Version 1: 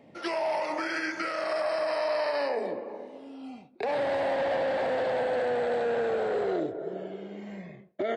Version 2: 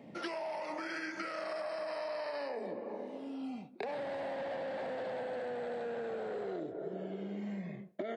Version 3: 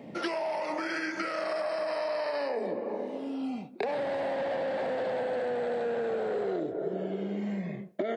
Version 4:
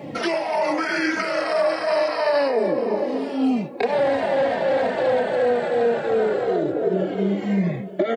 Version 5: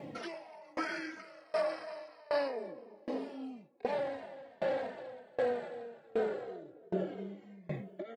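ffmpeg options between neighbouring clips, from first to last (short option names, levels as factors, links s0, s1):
-af "highpass=78,equalizer=f=200:w=1.8:g=6,acompressor=threshold=0.0141:ratio=6"
-af "equalizer=f=430:w=1.5:g=2,volume=2.11"
-filter_complex "[0:a]asplit=2[s0][s1];[s1]alimiter=level_in=1.5:limit=0.0631:level=0:latency=1,volume=0.668,volume=1.19[s2];[s0][s2]amix=inputs=2:normalize=0,aecho=1:1:881:0.178,asplit=2[s3][s4];[s4]adelay=3,afreqshift=-3[s5];[s3][s5]amix=inputs=2:normalize=1,volume=2.51"
-af "aeval=exprs='val(0)*pow(10,-29*if(lt(mod(1.3*n/s,1),2*abs(1.3)/1000),1-mod(1.3*n/s,1)/(2*abs(1.3)/1000),(mod(1.3*n/s,1)-2*abs(1.3)/1000)/(1-2*abs(1.3)/1000))/20)':c=same,volume=0.355"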